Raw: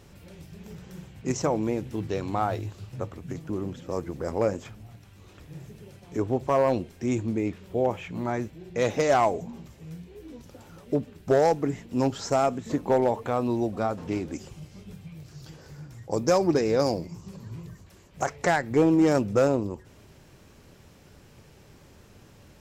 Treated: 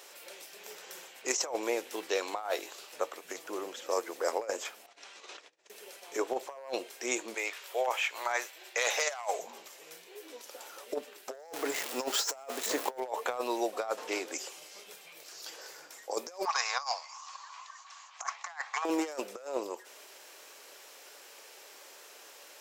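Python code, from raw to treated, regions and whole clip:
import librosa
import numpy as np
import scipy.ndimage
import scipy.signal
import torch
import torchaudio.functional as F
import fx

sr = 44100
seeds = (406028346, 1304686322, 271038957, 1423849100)

y = fx.chain(x, sr, fx.lowpass(hz=6900.0, slope=24),
    fx.over_compress(threshold_db=-51.0, ratio=-0.5), at=(4.86, 5.7))
y = fx.chain(y, sr, fx.highpass(hz=810.0, slope=12),
    fx.over_compress(threshold_db=-32.0, ratio=-0.5), at=(7.34, 9.39))
y = fx.chain(y, sr, fx.zero_step(step_db=-36.5),
    fx.low_shelf(hz=130.0, db=11.5), at=(11.34, 13.0))
y = fx.chain(y, sr, fx.cheby1_bandpass(low_hz=760.0, high_hz=6900.0, order=4),
    fx.peak_eq(hz=1100.0, db=14.5, octaves=0.28), at=(16.45, 18.85))
y = scipy.signal.sosfilt(scipy.signal.butter(4, 440.0, 'highpass', fs=sr, output='sos'), y)
y = fx.tilt_eq(y, sr, slope=2.0)
y = fx.over_compress(y, sr, threshold_db=-32.0, ratio=-0.5)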